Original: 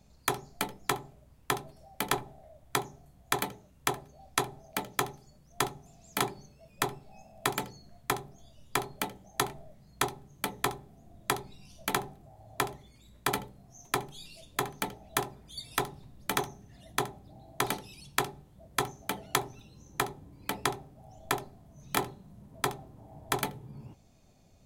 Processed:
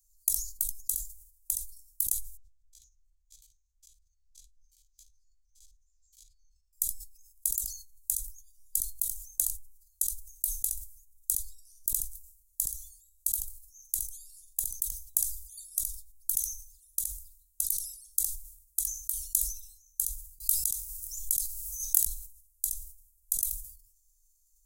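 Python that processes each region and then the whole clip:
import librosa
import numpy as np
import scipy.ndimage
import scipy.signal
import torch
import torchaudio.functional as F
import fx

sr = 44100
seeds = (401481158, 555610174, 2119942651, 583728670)

y = fx.chain(x, sr, fx.spec_steps(hold_ms=50),
    fx.air_absorb(metres=180.0), at=(2.37, 6.73))
y = fx.chain(y, sr, fx.low_shelf(hz=66.0, db=-10.5),
    fx.env_flatten(amount_pct=100), at=(20.4, 22.05))
y = scipy.signal.sosfilt(scipy.signal.cheby2(4, 80, [180.0, 1400.0], 'bandstop', fs=sr, output='sos'), y)
y = fx.high_shelf(y, sr, hz=7700.0, db=11.5)
y = fx.sustainer(y, sr, db_per_s=82.0)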